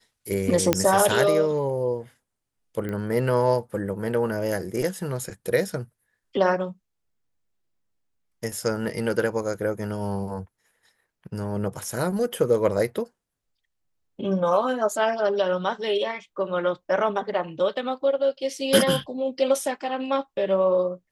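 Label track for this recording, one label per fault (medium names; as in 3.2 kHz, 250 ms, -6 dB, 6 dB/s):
0.730000	0.730000	pop -3 dBFS
2.890000	2.890000	pop -20 dBFS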